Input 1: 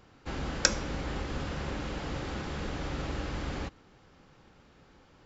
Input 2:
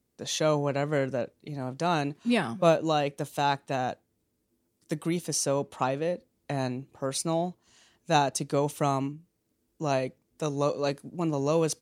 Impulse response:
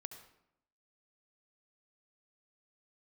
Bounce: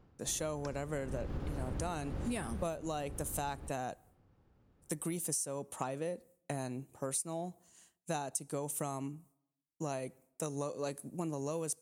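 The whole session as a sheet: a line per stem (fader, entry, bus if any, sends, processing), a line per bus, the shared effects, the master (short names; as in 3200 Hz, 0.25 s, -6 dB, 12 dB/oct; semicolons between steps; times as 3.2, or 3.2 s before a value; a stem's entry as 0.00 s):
0.92 s -12 dB -> 1.2 s -3 dB -> 2.31 s -3 dB -> 2.82 s -11.5 dB, 0.00 s, send -9.5 dB, octaver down 1 oct, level +2 dB; tilt shelf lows +6.5 dB, about 1300 Hz; auto duck -10 dB, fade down 0.20 s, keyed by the second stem
-4.5 dB, 0.00 s, send -20 dB, resonant high shelf 6300 Hz +12 dB, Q 1.5; expander -50 dBFS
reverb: on, RT60 0.80 s, pre-delay 64 ms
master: compressor 12:1, threshold -33 dBFS, peak gain reduction 14.5 dB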